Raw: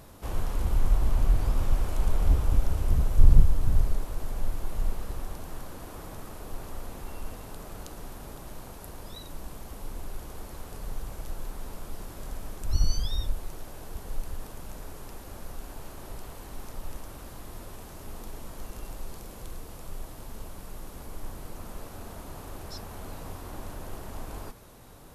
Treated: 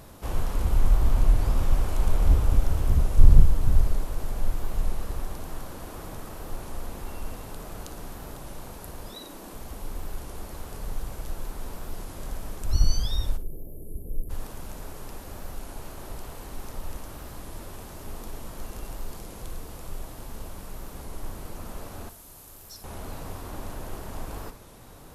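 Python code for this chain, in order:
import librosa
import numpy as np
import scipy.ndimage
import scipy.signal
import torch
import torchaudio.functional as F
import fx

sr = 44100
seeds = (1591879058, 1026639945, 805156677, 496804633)

y = fx.low_shelf_res(x, sr, hz=160.0, db=-13.5, q=1.5, at=(9.09, 9.54))
y = fx.cheby2_bandstop(y, sr, low_hz=1500.0, high_hz=4400.0, order=4, stop_db=70, at=(13.36, 14.29), fade=0.02)
y = fx.pre_emphasis(y, sr, coefficient=0.8, at=(22.09, 22.85))
y = fx.room_flutter(y, sr, wall_m=10.0, rt60_s=0.26)
y = fx.record_warp(y, sr, rpm=33.33, depth_cents=100.0)
y = y * librosa.db_to_amplitude(2.5)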